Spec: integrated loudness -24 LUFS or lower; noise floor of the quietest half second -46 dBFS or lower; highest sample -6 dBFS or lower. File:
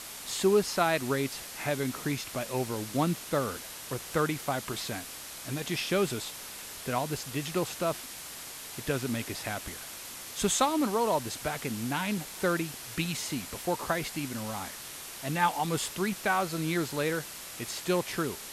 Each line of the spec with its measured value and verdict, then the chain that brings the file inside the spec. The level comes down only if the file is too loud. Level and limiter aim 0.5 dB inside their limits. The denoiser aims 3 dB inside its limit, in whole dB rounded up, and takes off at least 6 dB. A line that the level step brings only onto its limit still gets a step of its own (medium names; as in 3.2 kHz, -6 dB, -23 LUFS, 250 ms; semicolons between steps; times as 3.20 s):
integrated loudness -31.5 LUFS: pass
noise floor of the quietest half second -43 dBFS: fail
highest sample -11.5 dBFS: pass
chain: noise reduction 6 dB, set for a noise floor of -43 dBFS